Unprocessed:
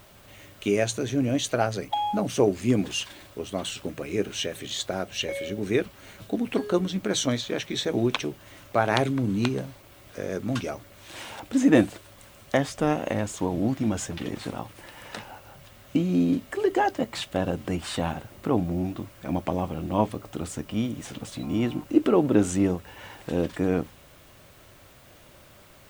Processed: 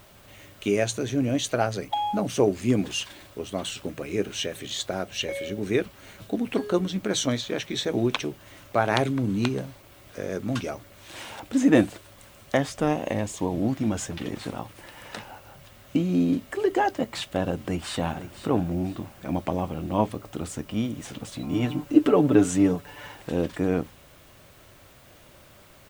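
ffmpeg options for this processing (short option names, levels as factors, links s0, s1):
-filter_complex "[0:a]asettb=1/sr,asplit=3[s0][s1][s2];[s0]atrim=end=12.884[s3];[s1]atrim=start=12.88:end=13.53,asetpts=PTS-STARTPTS,afade=t=in:d=0.004:c=qsin,afade=t=out:st=0.646:d=0.004:c=qsin,equalizer=f=1400:w=6.5:g=-11[s4];[s2]atrim=start=13.526[s5];[s3][s4]acrossfade=d=0.004:c1=hsin:c2=qsin[s6];[s6][s5]acrossfade=d=0.004:c1=qsin:c2=hsin,asplit=2[s7][s8];[s8]afade=t=in:st=17.52:d=0.01,afade=t=out:st=18.36:d=0.01,aecho=0:1:500|1000|1500|2000:0.237137|0.0829981|0.0290493|0.0101673[s9];[s7][s9]amix=inputs=2:normalize=0,asettb=1/sr,asplit=3[s10][s11][s12];[s10]atrim=end=21.524[s13];[s11]atrim=start=21.52:end=23.12,asetpts=PTS-STARTPTS,afade=t=in:d=0.004:c=qsin,afade=t=out:st=1.596:d=0.004:c=qsin,aecho=1:1:6.9:0.65,atrim=end_sample=70560[s14];[s12]atrim=start=23.116[s15];[s13][s14]acrossfade=d=0.004:c1=hsin:c2=qsin[s16];[s16][s15]acrossfade=d=0.004:c1=qsin:c2=hsin"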